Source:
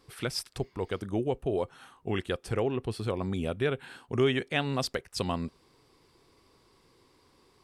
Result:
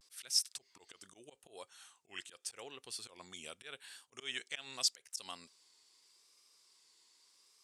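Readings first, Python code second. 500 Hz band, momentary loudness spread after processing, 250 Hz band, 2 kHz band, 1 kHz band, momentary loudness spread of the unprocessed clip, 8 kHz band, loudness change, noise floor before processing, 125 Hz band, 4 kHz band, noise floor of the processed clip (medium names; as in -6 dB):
-25.5 dB, 23 LU, -28.5 dB, -11.5 dB, -17.5 dB, 8 LU, +5.0 dB, -8.0 dB, -65 dBFS, -34.5 dB, -1.5 dB, -75 dBFS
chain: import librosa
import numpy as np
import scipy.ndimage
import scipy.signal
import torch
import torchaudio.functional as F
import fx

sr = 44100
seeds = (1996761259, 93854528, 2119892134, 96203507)

y = fx.auto_swell(x, sr, attack_ms=126.0)
y = fx.bandpass_q(y, sr, hz=7100.0, q=1.6)
y = fx.vibrato(y, sr, rate_hz=0.82, depth_cents=79.0)
y = F.gain(torch.from_numpy(y), 7.5).numpy()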